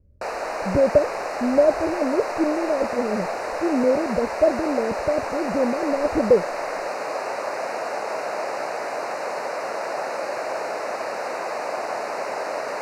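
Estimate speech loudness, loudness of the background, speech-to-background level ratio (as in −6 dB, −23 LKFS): −23.0 LKFS, −28.0 LKFS, 5.0 dB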